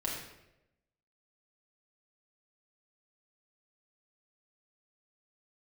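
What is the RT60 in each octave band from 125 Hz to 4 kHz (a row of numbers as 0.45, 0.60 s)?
1.1, 0.95, 1.0, 0.80, 0.80, 0.65 s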